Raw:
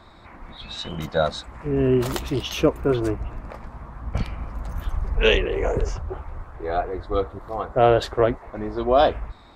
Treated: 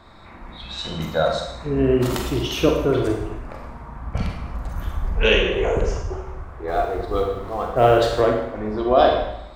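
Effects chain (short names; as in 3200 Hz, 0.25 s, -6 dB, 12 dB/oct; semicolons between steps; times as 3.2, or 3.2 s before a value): 6.68–8.21 G.711 law mismatch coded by mu; Schroeder reverb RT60 0.8 s, combs from 33 ms, DRR 1 dB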